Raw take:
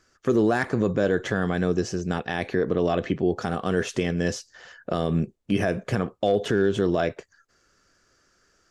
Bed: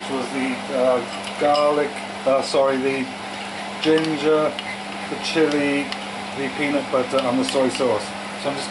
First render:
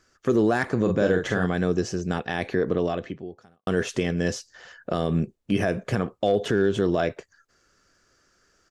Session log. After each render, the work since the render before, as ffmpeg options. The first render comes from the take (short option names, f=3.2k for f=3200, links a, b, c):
-filter_complex "[0:a]asplit=3[a][b][c];[a]afade=t=out:st=0.85:d=0.02[d];[b]asplit=2[e][f];[f]adelay=44,volume=-5dB[g];[e][g]amix=inputs=2:normalize=0,afade=t=in:st=0.85:d=0.02,afade=t=out:st=1.45:d=0.02[h];[c]afade=t=in:st=1.45:d=0.02[i];[d][h][i]amix=inputs=3:normalize=0,asplit=2[j][k];[j]atrim=end=3.67,asetpts=PTS-STARTPTS,afade=t=out:st=2.75:d=0.92:c=qua[l];[k]atrim=start=3.67,asetpts=PTS-STARTPTS,afade=t=in:d=0.004:c=hsin[m];[l][m]concat=n=2:v=0:a=1"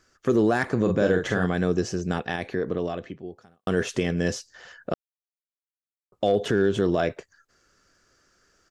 -filter_complex "[0:a]asplit=5[a][b][c][d][e];[a]atrim=end=2.362[f];[b]atrim=start=2.358:end=3.242,asetpts=PTS-STARTPTS,volume=-3.5dB[g];[c]atrim=start=3.238:end=4.94,asetpts=PTS-STARTPTS,afade=t=out:st=1.698:d=0.004:c=hsin[h];[d]atrim=start=4.94:end=6.12,asetpts=PTS-STARTPTS,volume=0[i];[e]atrim=start=6.12,asetpts=PTS-STARTPTS,afade=t=in:d=0.004:c=hsin[j];[f][g]acrossfade=d=0.004:c1=hsin:c2=hsin[k];[h][i][j]concat=n=3:v=0:a=1[l];[k][l]acrossfade=d=0.004:c1=hsin:c2=hsin"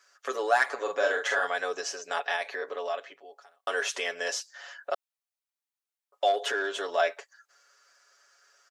-af "highpass=f=600:w=0.5412,highpass=f=600:w=1.3066,aecho=1:1:7.1:0.84"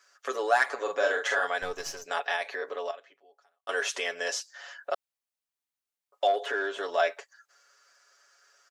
-filter_complex "[0:a]asettb=1/sr,asplit=3[a][b][c];[a]atrim=end=1.624[d];[b]atrim=start=1.62:end=2.06,asetpts=PTS-STARTPTS,afade=t=in:d=0.004:c=qsin,afade=t=out:st=0.436:d=0.004:c=qsin,aeval=exprs='if(lt(val(0),0),0.447*val(0),val(0))':c=same[e];[c]atrim=start=2.056[f];[d][e]acrossfade=d=0.004:c1=hsin:c2=qsin[g];[g][f]acrossfade=d=0.004:c1=qsin:c2=hsin,asettb=1/sr,asplit=3[h][i][j];[h]atrim=end=6.274[k];[i]atrim=start=6.27:end=6.83,asetpts=PTS-STARTPTS,afade=t=in:d=0.004:c=qsin,afade=t=out:st=0.556:d=0.004:c=qsin,acrossover=split=2500[l][m];[m]acompressor=threshold=-45dB:ratio=4:attack=1:release=60[n];[l][n]amix=inputs=2:normalize=0[o];[j]atrim=start=6.826[p];[k][o]acrossfade=d=0.004:c1=hsin:c2=qsin[q];[q][p]acrossfade=d=0.004:c1=qsin:c2=hsin,asplit=3[r][s][t];[r]atrim=end=2.912[u];[s]atrim=start=2.908:end=3.692,asetpts=PTS-STARTPTS,volume=-11dB[v];[t]atrim=start=3.688[w];[u][v]acrossfade=d=0.004:c1=hsin:c2=hsin[x];[x][w]acrossfade=d=0.004:c1=hsin:c2=hsin"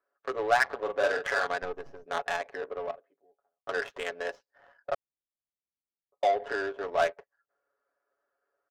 -af "adynamicsmooth=sensitivity=2:basefreq=520"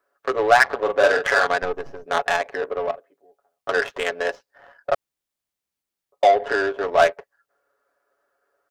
-af "volume=10dB,alimiter=limit=-3dB:level=0:latency=1"